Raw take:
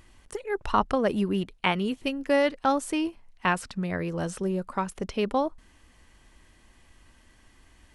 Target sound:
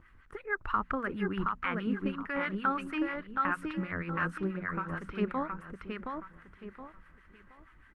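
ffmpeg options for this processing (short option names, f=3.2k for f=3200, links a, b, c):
-filter_complex "[0:a]alimiter=limit=-18dB:level=0:latency=1:release=148,asettb=1/sr,asplit=3[a][b][c];[a]atrim=end=4.514[d];[b]atrim=start=4.51:end=5.11,asetpts=PTS-STARTPTS,afade=t=in:d=0.004:c=qsin,afade=t=out:st=0.596:d=0.004:c=qsin,acompressor=threshold=-32dB:ratio=3[e];[c]atrim=start=5.106[f];[d][e]acrossfade=d=0.004:c1=hsin:c2=qsin[g];[g][f]acrossfade=d=0.004:c1=qsin:c2=hsin,firequalizer=gain_entry='entry(150,0);entry(690,-10);entry(1300,11);entry(3000,-7);entry(4300,-13);entry(6300,-19)':delay=0.05:min_phase=1,aecho=1:1:721|1442|2163|2884:0.631|0.202|0.0646|0.0207,asettb=1/sr,asplit=3[h][i][j];[h]atrim=end=0.664[k];[i]atrim=start=0.66:end=2.35,asetpts=PTS-STARTPTS,afade=t=in:d=0.004:c=qsin,afade=t=out:st=1.686:d=0.004:c=qsin,adynamicequalizer=threshold=0.00141:dfrequency=7900:dqfactor=1.3:tfrequency=7900:tqfactor=1.3:attack=5:release=100:ratio=0.375:range=2:mode=cutabove:tftype=bell[l];[j]atrim=start=2.346[m];[k][l]acrossfade=d=0.004:c1=hsin:c2=qsin[n];[n][m]acrossfade=d=0.004:c1=qsin:c2=hsin,bandreject=f=60:t=h:w=6,bandreject=f=120:t=h:w=6,bandreject=f=180:t=h:w=6,bandreject=f=240:t=h:w=6,acrossover=split=940[o][p];[o]aeval=exprs='val(0)*(1-0.7/2+0.7/2*cos(2*PI*6.3*n/s))':c=same[q];[p]aeval=exprs='val(0)*(1-0.7/2-0.7/2*cos(2*PI*6.3*n/s))':c=same[r];[q][r]amix=inputs=2:normalize=0" -ar 48000 -c:a libopus -b:a 24k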